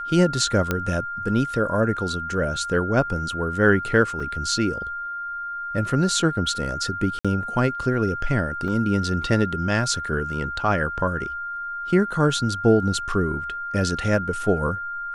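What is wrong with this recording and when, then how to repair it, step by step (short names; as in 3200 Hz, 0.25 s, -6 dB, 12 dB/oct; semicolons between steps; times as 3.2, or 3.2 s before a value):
tone 1400 Hz -28 dBFS
0.71 pop -8 dBFS
4.2 gap 3.9 ms
7.19–7.25 gap 56 ms
8.68 gap 2.4 ms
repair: de-click; notch 1400 Hz, Q 30; interpolate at 4.2, 3.9 ms; interpolate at 7.19, 56 ms; interpolate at 8.68, 2.4 ms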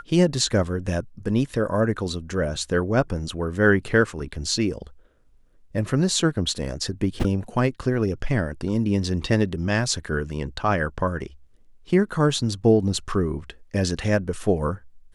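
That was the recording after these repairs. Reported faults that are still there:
none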